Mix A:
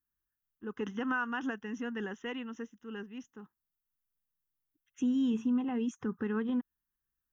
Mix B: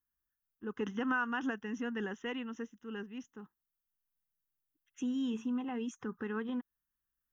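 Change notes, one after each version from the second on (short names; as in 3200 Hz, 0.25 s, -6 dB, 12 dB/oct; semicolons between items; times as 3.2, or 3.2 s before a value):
second voice: add low shelf 360 Hz -8 dB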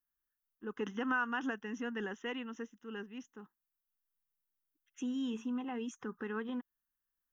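master: add bell 78 Hz -10.5 dB 1.9 oct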